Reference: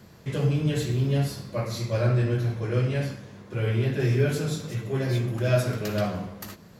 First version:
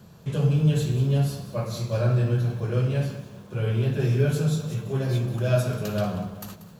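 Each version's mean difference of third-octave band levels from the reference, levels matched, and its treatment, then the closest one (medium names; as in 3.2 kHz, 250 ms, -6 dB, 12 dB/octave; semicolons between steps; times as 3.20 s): 2.5 dB: graphic EQ with 31 bands 160 Hz +7 dB, 315 Hz -6 dB, 2 kHz -11 dB, 5 kHz -4 dB; bit-crushed delay 186 ms, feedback 35%, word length 8-bit, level -13.5 dB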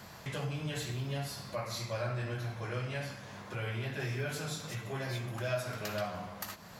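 7.0 dB: resonant low shelf 560 Hz -8 dB, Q 1.5; compression 2:1, threshold -48 dBFS, peak gain reduction 15 dB; trim +5.5 dB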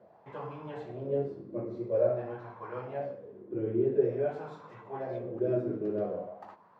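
10.0 dB: low-pass 2.3 kHz 6 dB/octave; wah-wah 0.48 Hz 330–1000 Hz, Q 5.3; trim +7.5 dB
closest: first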